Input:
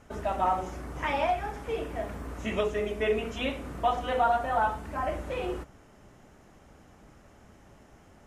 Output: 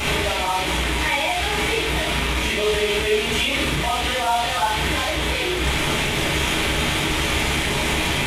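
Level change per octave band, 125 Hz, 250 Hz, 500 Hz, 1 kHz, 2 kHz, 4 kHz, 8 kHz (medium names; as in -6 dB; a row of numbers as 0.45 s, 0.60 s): +15.0 dB, +11.5 dB, +7.0 dB, +5.5 dB, +16.5 dB, +22.5 dB, +26.0 dB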